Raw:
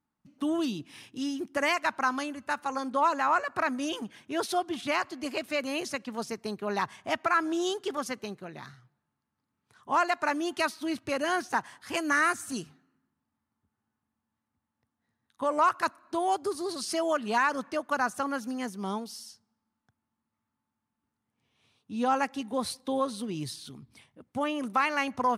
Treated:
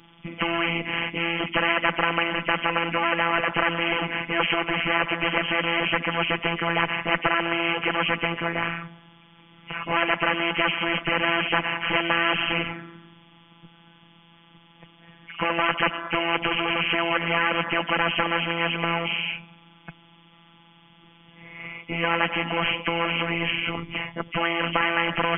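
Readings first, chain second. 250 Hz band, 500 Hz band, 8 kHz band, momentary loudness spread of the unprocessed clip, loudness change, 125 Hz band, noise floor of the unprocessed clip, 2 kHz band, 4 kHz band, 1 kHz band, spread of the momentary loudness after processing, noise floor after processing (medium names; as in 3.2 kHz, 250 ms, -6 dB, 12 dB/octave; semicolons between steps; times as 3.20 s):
+2.5 dB, +3.5 dB, under -40 dB, 12 LU, +6.0 dB, +14.5 dB, -85 dBFS, +10.0 dB, +13.0 dB, +3.0 dB, 7 LU, -54 dBFS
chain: knee-point frequency compression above 1.9 kHz 4:1; robot voice 168 Hz; spectrum-flattening compressor 4:1; trim +9 dB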